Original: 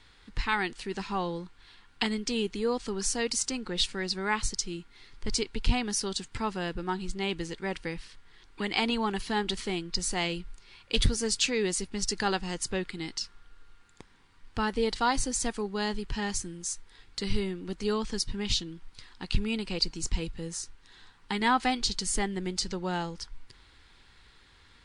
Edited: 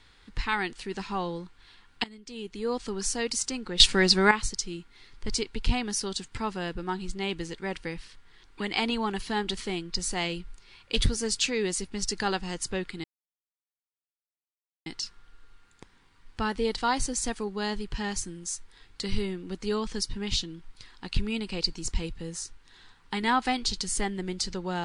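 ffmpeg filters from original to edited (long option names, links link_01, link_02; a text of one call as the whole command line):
ffmpeg -i in.wav -filter_complex "[0:a]asplit=5[link_01][link_02][link_03][link_04][link_05];[link_01]atrim=end=2.04,asetpts=PTS-STARTPTS,afade=type=out:start_time=2.036:duration=0.004:curve=hsin:silence=0.125893[link_06];[link_02]atrim=start=2.04:end=3.802,asetpts=PTS-STARTPTS,afade=type=in:duration=0.7:curve=qua:silence=0.125893[link_07];[link_03]atrim=start=3.798:end=4.312,asetpts=PTS-STARTPTS,volume=11dB[link_08];[link_04]atrim=start=4.308:end=13.04,asetpts=PTS-STARTPTS,afade=type=out:start_time=8.728:duration=0.004:curve=hsin,apad=pad_dur=1.82[link_09];[link_05]atrim=start=13.04,asetpts=PTS-STARTPTS,afade=type=in:duration=0.004:curve=hsin[link_10];[link_06][link_07]concat=n=2:v=0:a=1[link_11];[link_11][link_08]acrossfade=duration=0.004:curve1=hsin:curve2=hsin[link_12];[link_09][link_10]concat=n=2:v=0:a=1[link_13];[link_12][link_13]acrossfade=duration=0.004:curve1=hsin:curve2=hsin" out.wav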